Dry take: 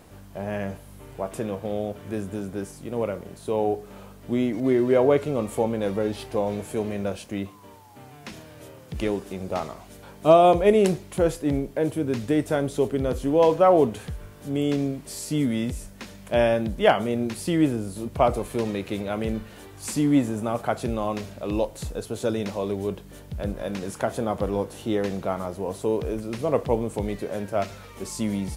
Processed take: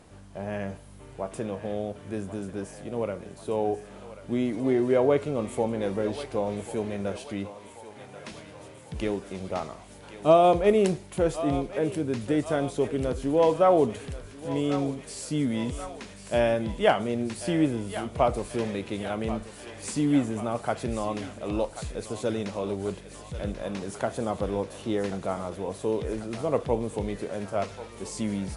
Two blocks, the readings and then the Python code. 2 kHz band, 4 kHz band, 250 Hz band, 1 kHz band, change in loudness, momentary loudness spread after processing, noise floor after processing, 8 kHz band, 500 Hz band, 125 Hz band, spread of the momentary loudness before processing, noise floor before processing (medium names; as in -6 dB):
-2.5 dB, -2.5 dB, -3.0 dB, -2.5 dB, -3.0 dB, 16 LU, -47 dBFS, -2.5 dB, -3.0 dB, -3.0 dB, 15 LU, -46 dBFS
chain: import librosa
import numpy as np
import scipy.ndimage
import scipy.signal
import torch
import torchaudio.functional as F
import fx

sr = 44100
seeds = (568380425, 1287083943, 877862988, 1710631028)

y = fx.brickwall_lowpass(x, sr, high_hz=11000.0)
y = fx.echo_thinned(y, sr, ms=1087, feedback_pct=76, hz=720.0, wet_db=-10.5)
y = y * 10.0 ** (-3.0 / 20.0)